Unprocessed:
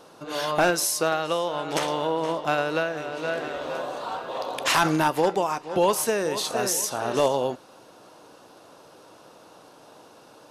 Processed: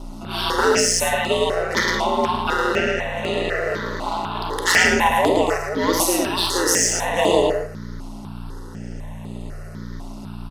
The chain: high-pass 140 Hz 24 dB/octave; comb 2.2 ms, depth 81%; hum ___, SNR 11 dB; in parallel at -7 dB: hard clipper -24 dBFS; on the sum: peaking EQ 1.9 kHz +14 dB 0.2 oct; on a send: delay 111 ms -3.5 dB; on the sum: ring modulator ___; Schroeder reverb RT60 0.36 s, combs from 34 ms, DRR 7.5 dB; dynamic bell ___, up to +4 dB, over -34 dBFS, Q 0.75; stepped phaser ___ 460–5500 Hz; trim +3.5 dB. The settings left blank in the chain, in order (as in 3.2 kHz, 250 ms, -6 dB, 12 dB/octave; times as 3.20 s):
60 Hz, 89 Hz, 4.3 kHz, 4 Hz